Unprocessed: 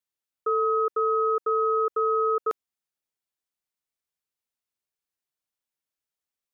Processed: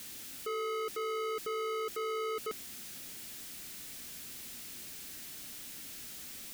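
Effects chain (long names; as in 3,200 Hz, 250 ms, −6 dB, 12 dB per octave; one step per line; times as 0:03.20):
converter with a step at zero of −37.5 dBFS
octave-band graphic EQ 250/500/1,000 Hz +7/−5/−9 dB
soft clipping −33 dBFS, distortion −8 dB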